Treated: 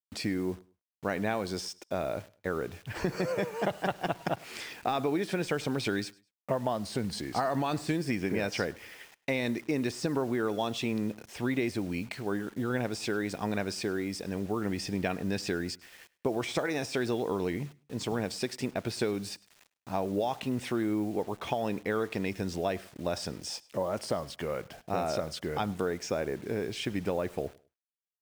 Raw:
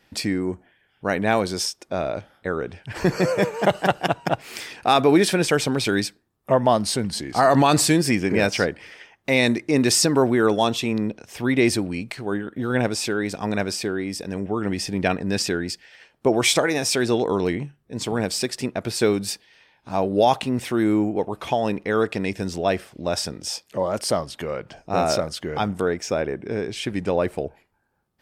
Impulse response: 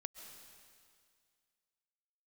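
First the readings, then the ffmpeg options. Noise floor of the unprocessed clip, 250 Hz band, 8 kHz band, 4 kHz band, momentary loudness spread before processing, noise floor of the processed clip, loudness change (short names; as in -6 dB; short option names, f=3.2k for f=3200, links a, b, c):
-65 dBFS, -9.5 dB, -15.5 dB, -12.0 dB, 11 LU, -79 dBFS, -10.5 dB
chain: -af "deesser=0.55,highshelf=f=12k:g=-12,acompressor=threshold=-21dB:ratio=8,acrusher=bits=7:mix=0:aa=0.000001,aecho=1:1:103|206:0.0708|0.0177,volume=-5dB"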